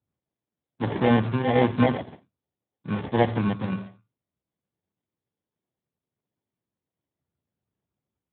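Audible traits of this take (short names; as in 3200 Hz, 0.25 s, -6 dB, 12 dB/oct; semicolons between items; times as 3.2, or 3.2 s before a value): phasing stages 12, 1.3 Hz, lowest notch 690–3000 Hz; aliases and images of a low sample rate 1300 Hz, jitter 0%; Speex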